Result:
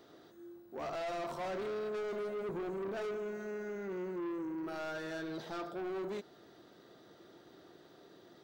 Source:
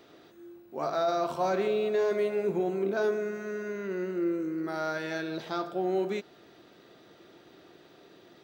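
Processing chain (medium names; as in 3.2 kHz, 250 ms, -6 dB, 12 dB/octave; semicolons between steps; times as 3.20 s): peaking EQ 2.5 kHz -8.5 dB 0.49 oct; saturation -33 dBFS, distortion -8 dB; trim -3 dB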